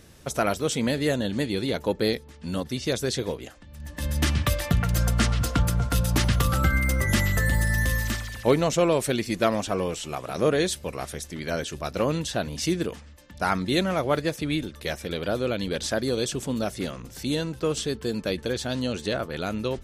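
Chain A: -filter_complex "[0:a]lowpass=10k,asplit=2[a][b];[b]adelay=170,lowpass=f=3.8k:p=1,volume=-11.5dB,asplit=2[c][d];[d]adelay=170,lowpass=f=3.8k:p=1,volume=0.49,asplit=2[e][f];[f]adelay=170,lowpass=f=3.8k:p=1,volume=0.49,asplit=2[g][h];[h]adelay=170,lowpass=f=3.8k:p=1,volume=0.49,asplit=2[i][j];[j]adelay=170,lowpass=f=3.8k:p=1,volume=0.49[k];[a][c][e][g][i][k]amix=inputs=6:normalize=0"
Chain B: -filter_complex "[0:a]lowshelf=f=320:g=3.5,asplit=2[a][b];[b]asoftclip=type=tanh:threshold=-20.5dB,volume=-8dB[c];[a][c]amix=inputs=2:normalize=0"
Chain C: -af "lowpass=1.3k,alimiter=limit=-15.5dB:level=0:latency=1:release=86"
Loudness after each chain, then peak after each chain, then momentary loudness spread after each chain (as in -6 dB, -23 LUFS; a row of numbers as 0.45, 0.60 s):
-26.0, -22.5, -28.5 LUFS; -7.5, -5.5, -15.5 dBFS; 10, 10, 9 LU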